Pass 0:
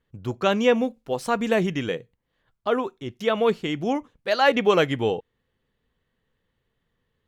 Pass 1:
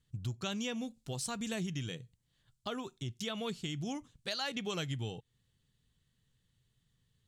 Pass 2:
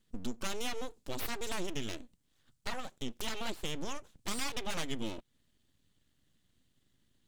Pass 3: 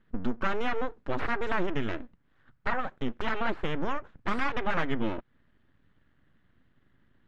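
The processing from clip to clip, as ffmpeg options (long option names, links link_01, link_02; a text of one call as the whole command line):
ffmpeg -i in.wav -af "equalizer=frequency=125:width_type=o:width=1:gain=9,equalizer=frequency=250:width_type=o:width=1:gain=-3,equalizer=frequency=500:width_type=o:width=1:gain=-10,equalizer=frequency=1000:width_type=o:width=1:gain=-6,equalizer=frequency=2000:width_type=o:width=1:gain=-5,equalizer=frequency=4000:width_type=o:width=1:gain=5,equalizer=frequency=8000:width_type=o:width=1:gain=12,acompressor=threshold=-35dB:ratio=3,volume=-2.5dB" out.wav
ffmpeg -i in.wav -af "aeval=exprs='abs(val(0))':channel_layout=same,volume=3.5dB" out.wav
ffmpeg -i in.wav -af "lowpass=frequency=1600:width_type=q:width=1.9,volume=8dB" out.wav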